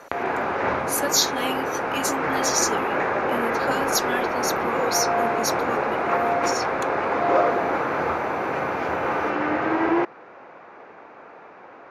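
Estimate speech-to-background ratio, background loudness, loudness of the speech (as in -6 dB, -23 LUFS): -3.0 dB, -24.0 LUFS, -27.0 LUFS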